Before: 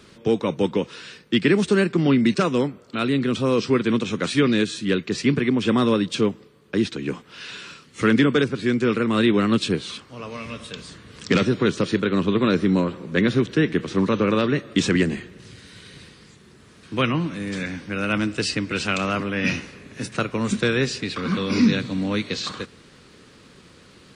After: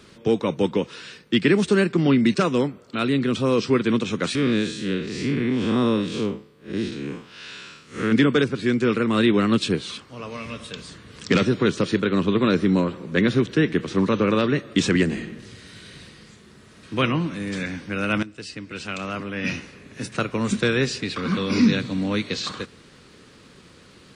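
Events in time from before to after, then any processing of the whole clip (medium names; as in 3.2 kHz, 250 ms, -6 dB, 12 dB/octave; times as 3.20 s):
4.35–8.12 s: spectral blur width 136 ms
15.05–16.99 s: reverb throw, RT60 0.82 s, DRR 4.5 dB
18.23–20.35 s: fade in, from -16 dB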